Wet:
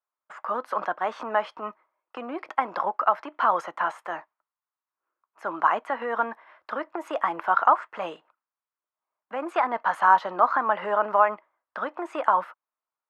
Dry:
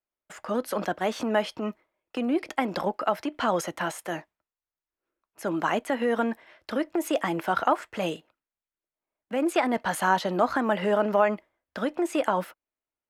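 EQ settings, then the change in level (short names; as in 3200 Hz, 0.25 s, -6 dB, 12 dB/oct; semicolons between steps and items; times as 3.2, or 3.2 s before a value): band-pass 1100 Hz, Q 2.7; +9.0 dB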